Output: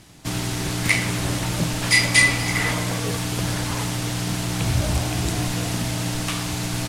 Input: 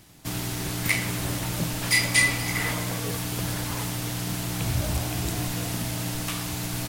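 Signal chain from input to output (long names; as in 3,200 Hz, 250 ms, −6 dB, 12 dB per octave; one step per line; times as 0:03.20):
low-pass filter 9,700 Hz 12 dB per octave
level +5 dB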